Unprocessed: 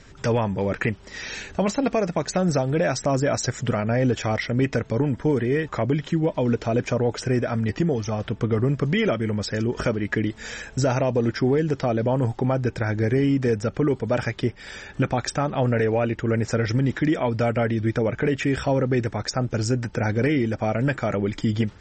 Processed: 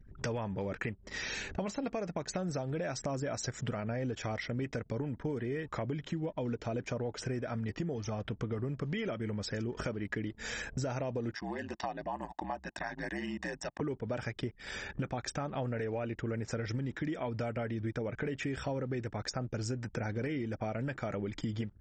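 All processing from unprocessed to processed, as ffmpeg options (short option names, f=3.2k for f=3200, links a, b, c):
-filter_complex "[0:a]asettb=1/sr,asplit=3[a][b][c];[a]atrim=end=11.354[d];[b]atrim=start=11.35:end=13.81,asetpts=PTS-STARTPTS,afade=t=in:d=0.004:c=qsin,afade=t=out:st=2.456:d=0.004:c=qsin,highpass=430,aeval=exprs='val(0)*sin(2*PI*61*n/s)':c=same,aecho=1:1:1.1:0.88,atrim=end_sample=108486[e];[c]atrim=start=13.806[f];[d][e]acrossfade=d=0.004:c1=hsin:c2=qsin[g];[g][f]acrossfade=d=0.004:c1=qsin:c2=hsin,anlmdn=0.158,acompressor=threshold=-33dB:ratio=4,volume=-2dB"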